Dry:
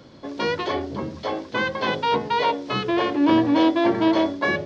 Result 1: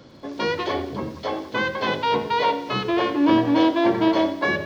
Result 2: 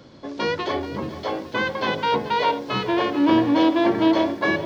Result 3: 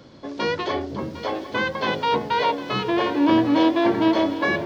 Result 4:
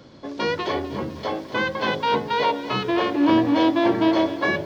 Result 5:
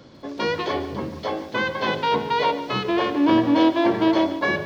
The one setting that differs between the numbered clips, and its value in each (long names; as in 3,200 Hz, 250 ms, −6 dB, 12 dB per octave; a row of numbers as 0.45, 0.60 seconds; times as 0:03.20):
feedback echo at a low word length, delay time: 91, 431, 754, 252, 144 milliseconds